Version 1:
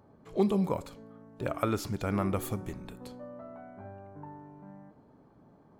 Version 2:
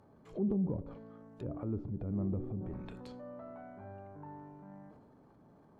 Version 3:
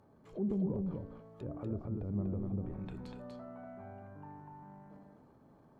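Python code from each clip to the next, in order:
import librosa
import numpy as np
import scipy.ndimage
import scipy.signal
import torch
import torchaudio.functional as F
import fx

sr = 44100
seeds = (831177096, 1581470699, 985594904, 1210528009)

y1 = fx.env_lowpass_down(x, sr, base_hz=320.0, full_db=-29.5)
y1 = fx.transient(y1, sr, attack_db=-5, sustain_db=6)
y1 = y1 * librosa.db_to_amplitude(-2.5)
y2 = y1 + 10.0 ** (-3.5 / 20.0) * np.pad(y1, (int(243 * sr / 1000.0), 0))[:len(y1)]
y2 = y2 * librosa.db_to_amplitude(-2.0)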